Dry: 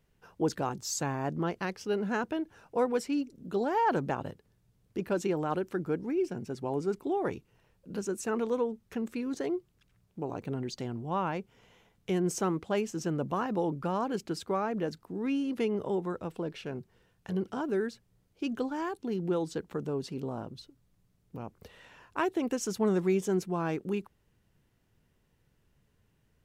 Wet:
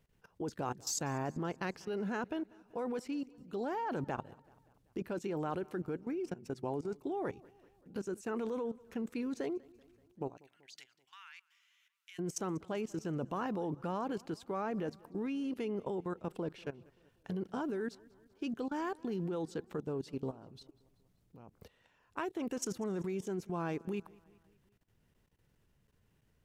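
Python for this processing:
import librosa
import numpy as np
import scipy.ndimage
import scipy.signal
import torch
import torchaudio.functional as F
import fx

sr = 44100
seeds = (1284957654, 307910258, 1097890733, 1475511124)

p1 = fx.cheby2_highpass(x, sr, hz=670.0, order=4, stop_db=50, at=(10.36, 12.18), fade=0.02)
p2 = fx.level_steps(p1, sr, step_db=18)
y = p2 + fx.echo_feedback(p2, sr, ms=192, feedback_pct=57, wet_db=-24.0, dry=0)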